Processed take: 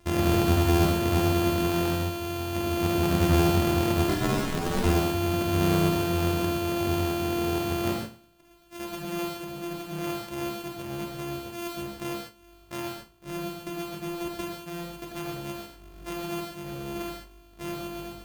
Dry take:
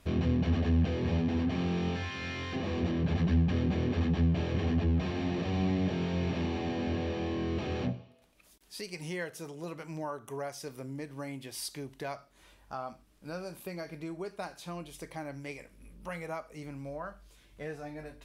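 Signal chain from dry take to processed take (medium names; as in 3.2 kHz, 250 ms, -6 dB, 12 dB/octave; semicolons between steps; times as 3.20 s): sorted samples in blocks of 128 samples; 4.07–4.82 s: ring modulator 38 Hz -> 110 Hz; gated-style reverb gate 170 ms flat, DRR -0.5 dB; trim +2 dB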